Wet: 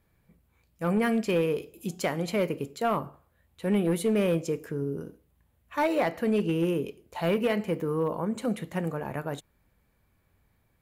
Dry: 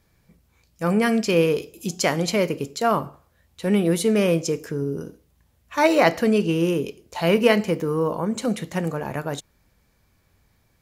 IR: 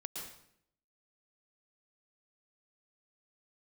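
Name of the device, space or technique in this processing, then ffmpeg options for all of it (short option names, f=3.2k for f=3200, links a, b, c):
limiter into clipper: -af "alimiter=limit=-9.5dB:level=0:latency=1:release=324,asoftclip=type=hard:threshold=-14dB,equalizer=f=5.6k:t=o:w=1:g=-10.5,volume=-5dB"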